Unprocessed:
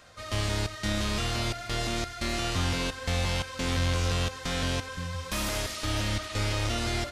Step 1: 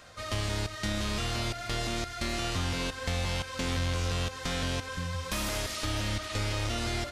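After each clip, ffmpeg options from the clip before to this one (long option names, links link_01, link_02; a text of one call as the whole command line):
ffmpeg -i in.wav -af "acompressor=threshold=-33dB:ratio=2,volume=2dB" out.wav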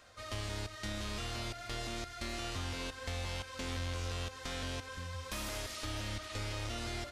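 ffmpeg -i in.wav -af "equalizer=frequency=160:width_type=o:width=0.3:gain=-13.5,volume=-7.5dB" out.wav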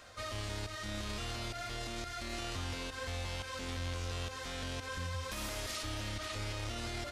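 ffmpeg -i in.wav -af "alimiter=level_in=11dB:limit=-24dB:level=0:latency=1:release=40,volume=-11dB,volume=5dB" out.wav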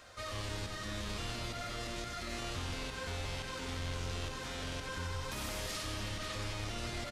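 ffmpeg -i in.wav -filter_complex "[0:a]asplit=8[link_01][link_02][link_03][link_04][link_05][link_06][link_07][link_08];[link_02]adelay=93,afreqshift=-110,volume=-7dB[link_09];[link_03]adelay=186,afreqshift=-220,volume=-12dB[link_10];[link_04]adelay=279,afreqshift=-330,volume=-17.1dB[link_11];[link_05]adelay=372,afreqshift=-440,volume=-22.1dB[link_12];[link_06]adelay=465,afreqshift=-550,volume=-27.1dB[link_13];[link_07]adelay=558,afreqshift=-660,volume=-32.2dB[link_14];[link_08]adelay=651,afreqshift=-770,volume=-37.2dB[link_15];[link_01][link_09][link_10][link_11][link_12][link_13][link_14][link_15]amix=inputs=8:normalize=0,volume=-1dB" out.wav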